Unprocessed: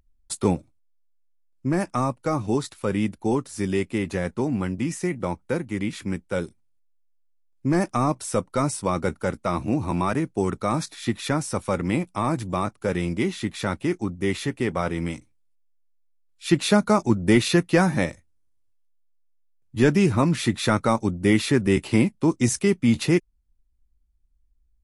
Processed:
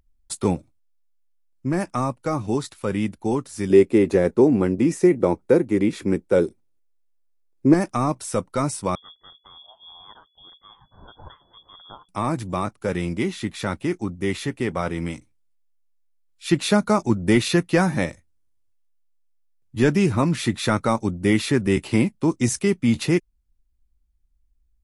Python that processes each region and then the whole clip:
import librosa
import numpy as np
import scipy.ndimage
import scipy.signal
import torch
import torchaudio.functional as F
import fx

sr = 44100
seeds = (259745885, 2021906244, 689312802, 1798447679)

y = fx.chain(x, sr, fx.peak_eq(hz=400.0, db=13.0, octaves=1.4),
    fx.notch(hz=3000.0, q=17.0), at=(3.7, 7.74))
y = fx.chain(y, sr, fx.cheby2_bandstop(low_hz=170.0, high_hz=1200.0, order=4, stop_db=50),
    fx.low_shelf(hz=120.0, db=-8.0),
    fx.freq_invert(carrier_hz=3400), at=(8.95, 12.09))